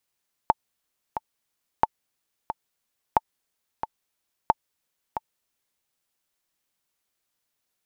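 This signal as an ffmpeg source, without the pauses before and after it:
-f lavfi -i "aevalsrc='pow(10,(-4-10.5*gte(mod(t,2*60/90),60/90))/20)*sin(2*PI*884*mod(t,60/90))*exp(-6.91*mod(t,60/90)/0.03)':d=5.33:s=44100"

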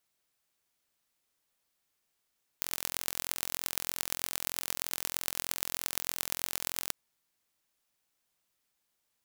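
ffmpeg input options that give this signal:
-f lavfi -i "aevalsrc='0.75*eq(mod(n,1021),0)*(0.5+0.5*eq(mod(n,5105),0))':d=4.29:s=44100"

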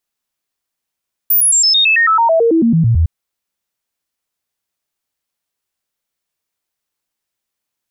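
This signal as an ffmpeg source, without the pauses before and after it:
-f lavfi -i "aevalsrc='0.398*clip(min(mod(t,0.11),0.11-mod(t,0.11))/0.005,0,1)*sin(2*PI*14800*pow(2,-floor(t/0.11)/2)*mod(t,0.11))':d=1.76:s=44100"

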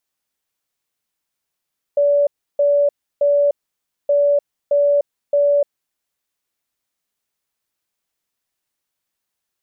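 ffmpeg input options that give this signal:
-f lavfi -i "aevalsrc='0.266*sin(2*PI*575*t)*clip(min(mod(mod(t,2.12),0.62),0.3-mod(mod(t,2.12),0.62))/0.005,0,1)*lt(mod(t,2.12),1.86)':d=4.24:s=44100"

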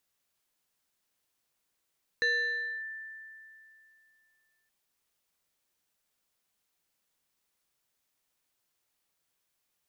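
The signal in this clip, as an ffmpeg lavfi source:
-f lavfi -i "aevalsrc='0.0708*pow(10,-3*t/2.77)*sin(2*PI*1770*t+0.62*clip(1-t/0.61,0,1)*sin(2*PI*1.27*1770*t))':d=2.47:s=44100"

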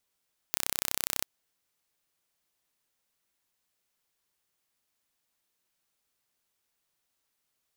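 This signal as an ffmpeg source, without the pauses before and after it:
-f lavfi -i "aevalsrc='0.841*eq(mod(n,1374),0)':d=0.69:s=44100"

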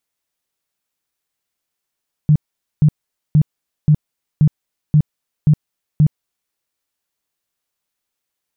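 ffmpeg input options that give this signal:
-f lavfi -i "aevalsrc='0.447*sin(2*PI*151*mod(t,0.53))*lt(mod(t,0.53),10/151)':d=4.24:s=44100"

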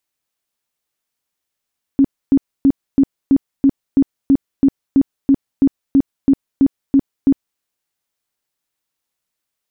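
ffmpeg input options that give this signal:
-f lavfi -i "aevalsrc='0.447*sin(2*PI*274*mod(t,0.33))*lt(mod(t,0.33),15/274)':d=5.61:s=44100"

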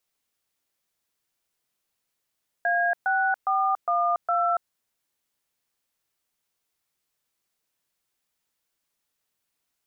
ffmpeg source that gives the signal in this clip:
-f lavfi -i "aevalsrc='0.0708*clip(min(mod(t,0.409),0.283-mod(t,0.409))/0.002,0,1)*(eq(floor(t/0.409),0)*(sin(2*PI*697*mod(t,0.409))+sin(2*PI*1633*mod(t,0.409)))+eq(floor(t/0.409),1)*(sin(2*PI*770*mod(t,0.409))+sin(2*PI*1477*mod(t,0.409)))+eq(floor(t/0.409),2)*(sin(2*PI*770*mod(t,0.409))+sin(2*PI*1209*mod(t,0.409)))+eq(floor(t/0.409),3)*(sin(2*PI*697*mod(t,0.409))+sin(2*PI*1209*mod(t,0.409)))+eq(floor(t/0.409),4)*(sin(2*PI*697*mod(t,0.409))+sin(2*PI*1336*mod(t,0.409))))':d=2.045:s=44100"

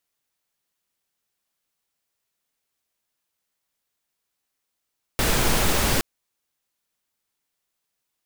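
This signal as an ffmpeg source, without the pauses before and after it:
-f lavfi -i "anoisesrc=c=pink:a=0.484:d=0.82:r=44100:seed=1"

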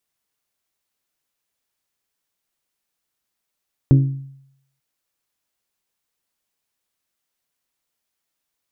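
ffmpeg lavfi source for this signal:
-f lavfi -i "aevalsrc='0.473*pow(10,-3*t/0.74)*sin(2*PI*136*t)+0.211*pow(10,-3*t/0.456)*sin(2*PI*272*t)+0.0944*pow(10,-3*t/0.401)*sin(2*PI*326.4*t)+0.0422*pow(10,-3*t/0.343)*sin(2*PI*408*t)+0.0188*pow(10,-3*t/0.28)*sin(2*PI*544*t)':d=0.89:s=44100"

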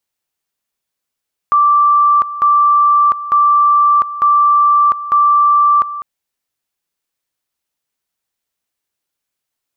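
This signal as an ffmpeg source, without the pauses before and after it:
-f lavfi -i "aevalsrc='pow(10,(-7-14*gte(mod(t,0.9),0.7))/20)*sin(2*PI*1170*t)':d=4.5:s=44100"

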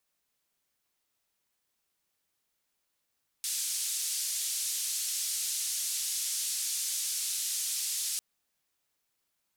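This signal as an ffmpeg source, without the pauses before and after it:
-f lavfi -i "anoisesrc=c=white:d=4.75:r=44100:seed=1,highpass=f=4800,lowpass=f=10000,volume=-21.9dB"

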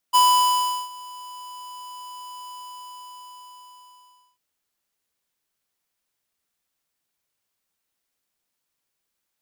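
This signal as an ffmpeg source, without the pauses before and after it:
-f lavfi -i "aevalsrc='0.188*(2*lt(mod(995*t,1),0.5)-1)':d=4.25:s=44100,afade=t=in:d=0.025,afade=t=out:st=0.025:d=0.728:silence=0.0631,afade=t=out:st=2.39:d=1.86"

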